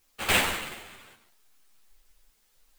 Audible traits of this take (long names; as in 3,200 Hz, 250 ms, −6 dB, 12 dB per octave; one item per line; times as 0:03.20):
aliases and images of a low sample rate 5,600 Hz, jitter 20%
sample-and-hold tremolo, depth 80%
a quantiser's noise floor 12 bits, dither triangular
a shimmering, thickened sound